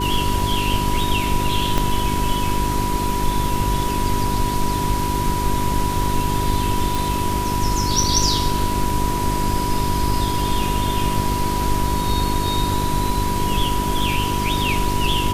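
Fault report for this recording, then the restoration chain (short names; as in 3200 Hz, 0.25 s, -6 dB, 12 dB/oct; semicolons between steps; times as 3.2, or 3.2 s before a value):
crackle 38/s -28 dBFS
hum 50 Hz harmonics 8 -25 dBFS
tone 980 Hz -23 dBFS
1.78 pop -6 dBFS
6.95 pop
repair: de-click; de-hum 50 Hz, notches 8; notch 980 Hz, Q 30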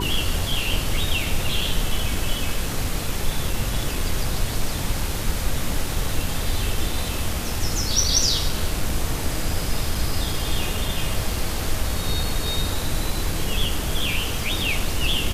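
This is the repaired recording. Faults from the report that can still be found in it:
1.78 pop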